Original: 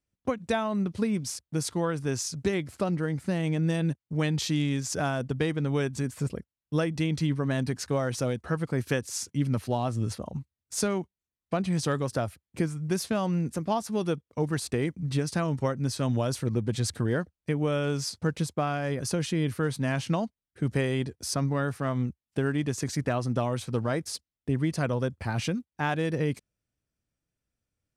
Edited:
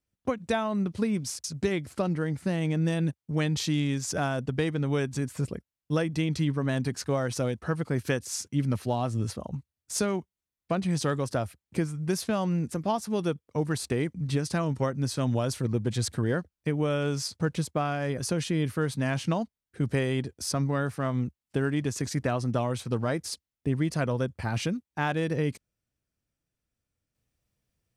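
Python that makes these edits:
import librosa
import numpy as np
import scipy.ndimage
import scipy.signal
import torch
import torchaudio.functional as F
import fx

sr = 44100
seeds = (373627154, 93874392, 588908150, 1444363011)

y = fx.edit(x, sr, fx.cut(start_s=1.44, length_s=0.82), tone=tone)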